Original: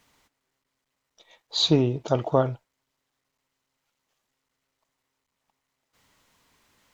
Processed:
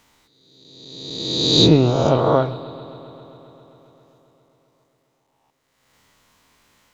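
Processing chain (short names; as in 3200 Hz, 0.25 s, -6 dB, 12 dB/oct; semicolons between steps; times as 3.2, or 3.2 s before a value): spectral swells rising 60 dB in 1.60 s; 1.58–2.18 low shelf 210 Hz +6.5 dB; analogue delay 0.133 s, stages 4096, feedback 80%, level -19 dB; gain +2.5 dB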